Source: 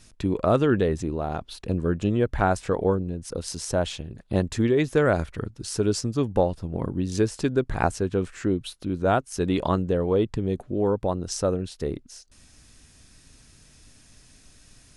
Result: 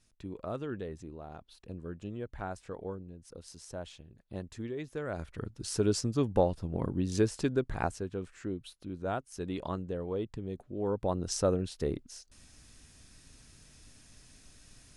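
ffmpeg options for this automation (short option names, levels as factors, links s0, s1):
-af "volume=1.68,afade=t=in:st=5.08:d=0.57:silence=0.237137,afade=t=out:st=7.29:d=0.83:silence=0.398107,afade=t=in:st=10.73:d=0.52:silence=0.354813"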